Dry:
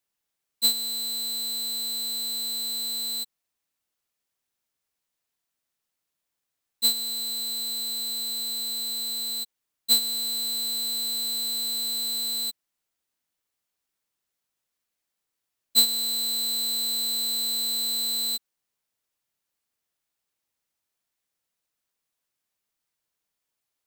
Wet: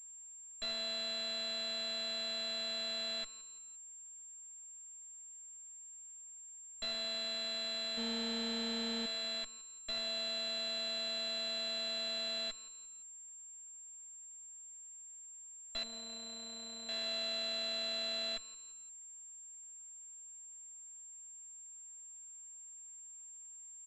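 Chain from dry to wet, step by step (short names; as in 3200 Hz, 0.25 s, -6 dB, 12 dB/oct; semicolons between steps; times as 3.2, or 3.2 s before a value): 7.97–9.06 small resonant body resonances 230/470/750/1800 Hz, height 15 dB; tube stage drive 34 dB, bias 0.35; 15.83–16.89 air absorption 340 m; feedback echo 0.172 s, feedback 44%, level -20.5 dB; pulse-width modulation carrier 7400 Hz; gain +4 dB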